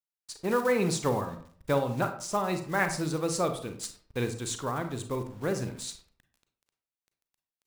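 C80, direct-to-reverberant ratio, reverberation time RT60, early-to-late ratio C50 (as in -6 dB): 13.5 dB, 7.0 dB, 0.50 s, 9.5 dB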